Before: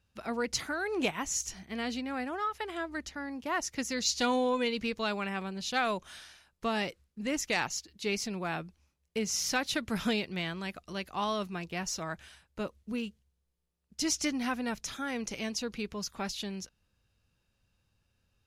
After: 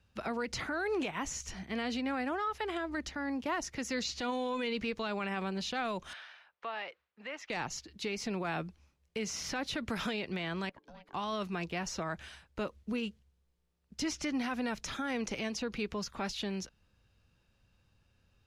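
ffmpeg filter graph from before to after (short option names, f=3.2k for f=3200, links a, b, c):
-filter_complex "[0:a]asettb=1/sr,asplit=3[a][b][c];[a]atrim=end=6.134[d];[b]atrim=start=6.13:end=7.5,asetpts=PTS-STARTPTS,afade=t=in:d=0.004:c=qsin,afade=t=out:st=1.366:d=0.004:c=qsin,highpass=f=130:p=1,acrossover=split=550 3500:gain=0.0794 1 0.0794[e][f][g];[e][f][g]amix=inputs=3:normalize=0,acompressor=threshold=-47dB:ratio=2:attack=3.2:release=140:knee=1:detection=peak[h];[c]atrim=start=7.496[i];[d][h]acrossfade=d=0.004:c1=hsin:c2=qsin[j];[j][i]acrossfade=d=0.004:c1=qsin:c2=hsin,asettb=1/sr,asplit=3[k][l][m];[k]atrim=end=10.694[n];[l]atrim=start=10.69:end=11.14,asetpts=PTS-STARTPTS,afade=t=in:d=0.004:c=qsin,afade=t=out:st=0.446:d=0.004:c=qsin,lowpass=f=2.8k:p=1,acompressor=threshold=-52dB:ratio=8:attack=3.2:release=140:knee=1:detection=peak,aeval=exprs='val(0)*sin(2*PI*370*n/s)':c=same[o];[m]atrim=start=11.136[p];[n][o]acrossfade=d=0.004:c1=hsin:c2=qsin[q];[q][p]acrossfade=d=0.004:c1=qsin:c2=hsin,highshelf=f=7.8k:g=-12,acrossover=split=290|1100|2900[r][s][t][u];[r]acompressor=threshold=-43dB:ratio=4[v];[s]acompressor=threshold=-37dB:ratio=4[w];[t]acompressor=threshold=-40dB:ratio=4[x];[u]acompressor=threshold=-46dB:ratio=4[y];[v][w][x][y]amix=inputs=4:normalize=0,alimiter=level_in=7.5dB:limit=-24dB:level=0:latency=1:release=66,volume=-7.5dB,volume=5dB"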